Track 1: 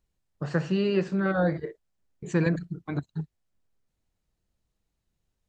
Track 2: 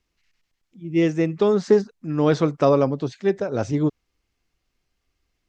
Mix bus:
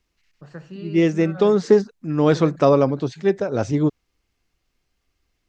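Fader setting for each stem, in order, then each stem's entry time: −11.5, +2.0 decibels; 0.00, 0.00 seconds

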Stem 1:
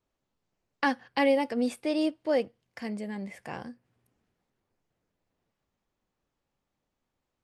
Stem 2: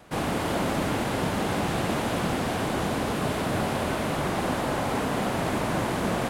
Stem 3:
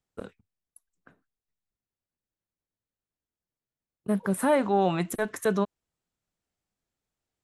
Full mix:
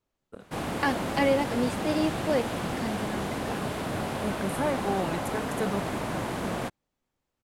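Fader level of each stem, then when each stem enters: 0.0, −4.5, −6.0 decibels; 0.00, 0.40, 0.15 seconds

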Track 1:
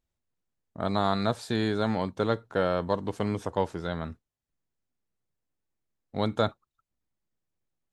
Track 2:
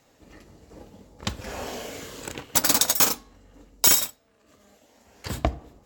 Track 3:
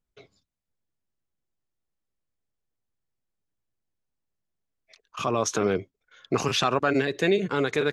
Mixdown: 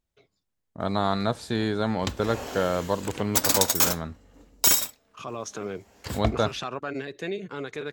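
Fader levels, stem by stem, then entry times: +1.0, −2.0, −9.5 decibels; 0.00, 0.80, 0.00 seconds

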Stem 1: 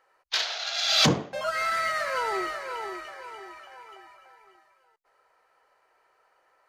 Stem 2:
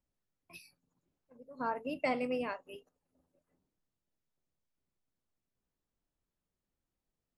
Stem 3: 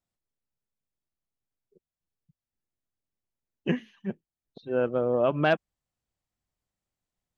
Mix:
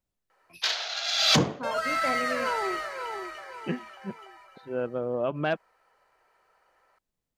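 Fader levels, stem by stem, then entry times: −0.5, +0.5, −4.5 decibels; 0.30, 0.00, 0.00 seconds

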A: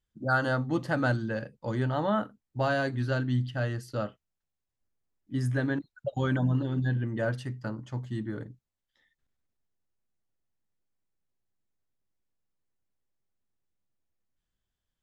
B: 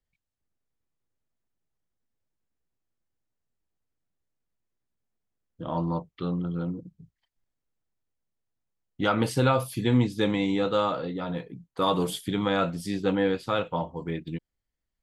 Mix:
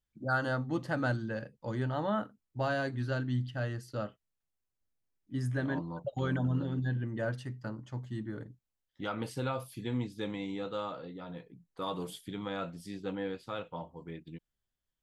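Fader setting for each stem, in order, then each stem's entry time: −4.5, −12.0 decibels; 0.00, 0.00 seconds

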